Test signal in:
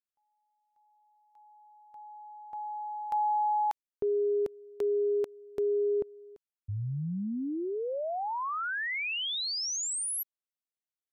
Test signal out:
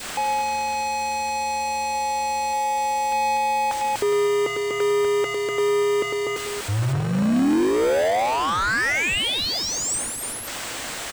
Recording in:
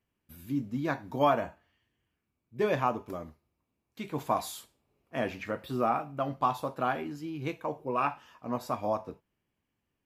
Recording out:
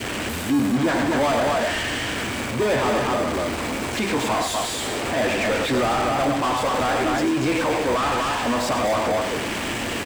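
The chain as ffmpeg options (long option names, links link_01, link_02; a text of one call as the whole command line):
ffmpeg -i in.wav -filter_complex "[0:a]aeval=exprs='val(0)+0.5*0.0178*sgn(val(0))':channel_layout=same,aecho=1:1:102|244.9:0.355|0.501,asplit=2[link_01][link_02];[link_02]highpass=frequency=720:poles=1,volume=32dB,asoftclip=type=tanh:threshold=-11.5dB[link_03];[link_01][link_03]amix=inputs=2:normalize=0,lowpass=frequency=1800:poles=1,volume=-6dB,adynamicequalizer=threshold=0.0224:dfrequency=1000:dqfactor=0.94:tfrequency=1000:tqfactor=0.94:attack=5:release=100:ratio=0.375:range=2:mode=cutabove:tftype=bell,highpass=46,asplit=2[link_04][link_05];[link_05]acrusher=samples=32:mix=1:aa=0.000001,volume=-10dB[link_06];[link_04][link_06]amix=inputs=2:normalize=0,equalizer=frequency=160:width_type=o:width=0.33:gain=-8,equalizer=frequency=400:width_type=o:width=0.33:gain=-3,equalizer=frequency=8000:width_type=o:width=0.33:gain=7,equalizer=frequency=12500:width_type=o:width=0.33:gain=-6" out.wav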